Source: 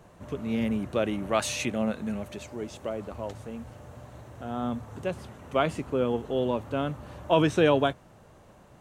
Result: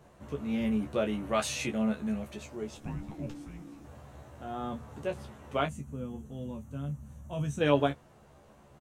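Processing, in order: 2.77–3.85 s: frequency shift -400 Hz; 5.66–7.61 s: time-frequency box 270–5700 Hz -15 dB; on a send: early reflections 14 ms -4.5 dB, 28 ms -9.5 dB; on the sum: trim -5 dB

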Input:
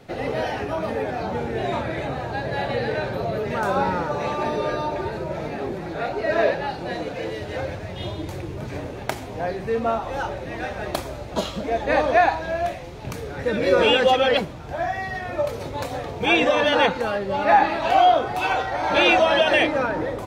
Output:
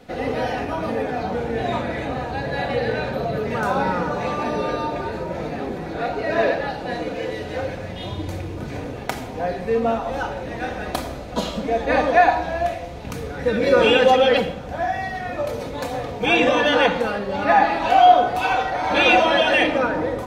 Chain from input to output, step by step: simulated room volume 3400 m³, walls furnished, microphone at 1.9 m

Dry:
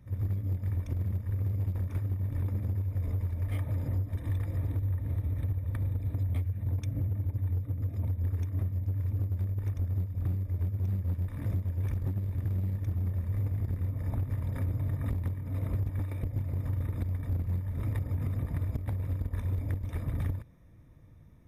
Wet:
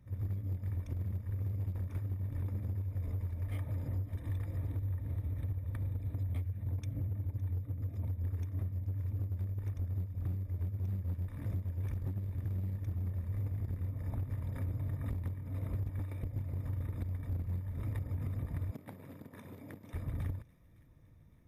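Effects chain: 18.71–19.94 s: high-pass 160 Hz 24 dB/octave; on a send: feedback echo behind a high-pass 561 ms, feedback 56%, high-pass 2 kHz, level -19.5 dB; on the sum: trim -5.5 dB

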